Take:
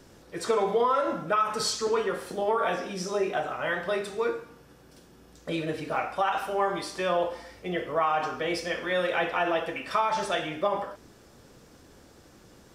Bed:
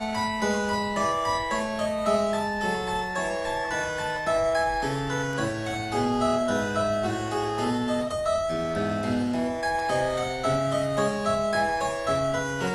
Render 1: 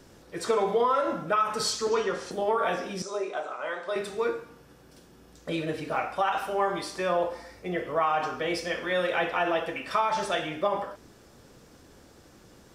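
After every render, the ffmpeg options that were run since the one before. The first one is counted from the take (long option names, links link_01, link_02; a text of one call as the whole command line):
ffmpeg -i in.wav -filter_complex "[0:a]asettb=1/sr,asplit=3[link_01][link_02][link_03];[link_01]atrim=end=1.914[link_04];[link_02]atrim=start=1.91:end=2.31,asetpts=PTS-STARTPTS,afade=type=in:duration=0.004:curve=qsin,afade=type=out:start_time=0.396:duration=0.004:curve=qsin,lowpass=frequency=6100:width_type=q:width=2.8[link_05];[link_03]atrim=start=2.306[link_06];[link_04][link_05]acrossfade=duration=0.004:curve1=hsin:curve2=qsin[link_07];[link_07][link_06]acrossfade=duration=0.004:curve1=qsin:curve2=hsin,asettb=1/sr,asplit=3[link_08][link_09][link_10];[link_08]atrim=end=3.024[link_11];[link_09]atrim=start=3.02:end=3.96,asetpts=PTS-STARTPTS,afade=type=in:duration=0.004:curve=qsin,afade=type=out:start_time=0.936:duration=0.004:curve=qsin,highpass=450,equalizer=frequency=770:width_type=q:width=4:gain=-5,equalizer=frequency=1800:width_type=q:width=4:gain=-9,equalizer=frequency=2900:width_type=q:width=4:gain=-9,equalizer=frequency=5300:width_type=q:width=4:gain=-4,lowpass=frequency=8900:width=0.5412,lowpass=frequency=8900:width=1.3066[link_12];[link_10]atrim=start=3.956[link_13];[link_11][link_12]acrossfade=duration=0.004:curve1=hsin:curve2=qsin[link_14];[link_14][link_13]acrossfade=duration=0.004:curve1=qsin:curve2=hsin,asettb=1/sr,asplit=3[link_15][link_16][link_17];[link_15]atrim=end=6.964[link_18];[link_16]atrim=start=6.96:end=7.85,asetpts=PTS-STARTPTS,afade=type=in:duration=0.004:curve=qsin,afade=type=out:start_time=0.886:duration=0.004:curve=qsin,equalizer=frequency=3100:width_type=o:width=0.29:gain=-8[link_19];[link_17]atrim=start=7.846[link_20];[link_18][link_19]acrossfade=duration=0.004:curve1=hsin:curve2=qsin[link_21];[link_21][link_20]acrossfade=duration=0.004:curve1=qsin:curve2=hsin" out.wav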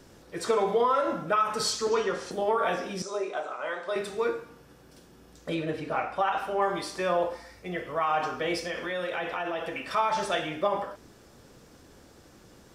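ffmpeg -i in.wav -filter_complex "[0:a]asettb=1/sr,asplit=3[link_01][link_02][link_03];[link_01]atrim=end=5.544[link_04];[link_02]atrim=start=5.54:end=6.62,asetpts=PTS-STARTPTS,afade=type=in:duration=0.004:curve=qsin,afade=type=out:start_time=1.076:duration=0.004:curve=qsin,highshelf=frequency=4700:gain=-8.5[link_05];[link_03]atrim=start=6.616[link_06];[link_04][link_05]acrossfade=duration=0.004:curve1=hsin:curve2=qsin[link_07];[link_07][link_06]acrossfade=duration=0.004:curve1=qsin:curve2=hsin,asettb=1/sr,asplit=3[link_08][link_09][link_10];[link_08]atrim=end=7.364[link_11];[link_09]atrim=start=7.36:end=8.09,asetpts=PTS-STARTPTS,afade=type=in:duration=0.004:curve=qsin,afade=type=out:start_time=0.726:duration=0.004:curve=qsin,equalizer=frequency=420:width=0.57:gain=-4.5[link_12];[link_10]atrim=start=8.086[link_13];[link_11][link_12]acrossfade=duration=0.004:curve1=hsin:curve2=qsin[link_14];[link_14][link_13]acrossfade=duration=0.004:curve1=qsin:curve2=hsin,asplit=3[link_15][link_16][link_17];[link_15]afade=type=out:start_time=8.59:duration=0.02[link_18];[link_16]acompressor=threshold=-29dB:ratio=3:attack=3.2:release=140:knee=1:detection=peak,afade=type=in:start_time=8.59:duration=0.02,afade=type=out:start_time=9.95:duration=0.02[link_19];[link_17]afade=type=in:start_time=9.95:duration=0.02[link_20];[link_18][link_19][link_20]amix=inputs=3:normalize=0" out.wav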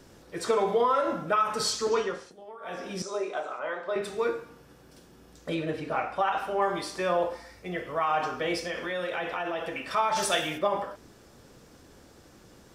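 ffmpeg -i in.wav -filter_complex "[0:a]asettb=1/sr,asplit=3[link_01][link_02][link_03];[link_01]atrim=end=3.594[link_04];[link_02]atrim=start=3.59:end=4.03,asetpts=PTS-STARTPTS,afade=type=in:duration=0.004:curve=qsin,afade=type=out:start_time=0.436:duration=0.004:curve=qsin,aemphasis=mode=reproduction:type=75fm[link_05];[link_03]atrim=start=4.026[link_06];[link_04][link_05]acrossfade=duration=0.004:curve1=hsin:curve2=qsin[link_07];[link_07][link_06]acrossfade=duration=0.004:curve1=qsin:curve2=hsin,asplit=3[link_08][link_09][link_10];[link_08]afade=type=out:start_time=10.15:duration=0.02[link_11];[link_09]aemphasis=mode=production:type=75kf,afade=type=in:start_time=10.15:duration=0.02,afade=type=out:start_time=10.57:duration=0.02[link_12];[link_10]afade=type=in:start_time=10.57:duration=0.02[link_13];[link_11][link_12][link_13]amix=inputs=3:normalize=0,asplit=3[link_14][link_15][link_16];[link_14]atrim=end=2.34,asetpts=PTS-STARTPTS,afade=type=out:start_time=1.98:duration=0.36:silence=0.112202[link_17];[link_15]atrim=start=2.34:end=2.61,asetpts=PTS-STARTPTS,volume=-19dB[link_18];[link_16]atrim=start=2.61,asetpts=PTS-STARTPTS,afade=type=in:duration=0.36:silence=0.112202[link_19];[link_17][link_18][link_19]concat=n=3:v=0:a=1" out.wav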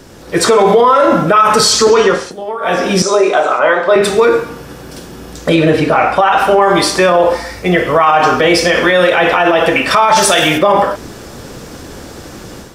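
ffmpeg -i in.wav -af "dynaudnorm=framelen=180:gausssize=3:maxgain=8.5dB,alimiter=level_in=15dB:limit=-1dB:release=50:level=0:latency=1" out.wav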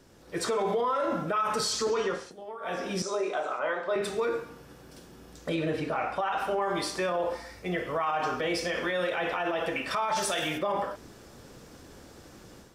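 ffmpeg -i in.wav -af "volume=-19.5dB" out.wav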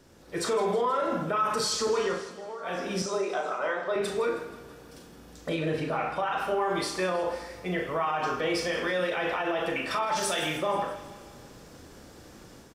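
ffmpeg -i in.wav -filter_complex "[0:a]asplit=2[link_01][link_02];[link_02]adelay=38,volume=-8dB[link_03];[link_01][link_03]amix=inputs=2:normalize=0,aecho=1:1:160|320|480|640|800|960:0.168|0.0974|0.0565|0.0328|0.019|0.011" out.wav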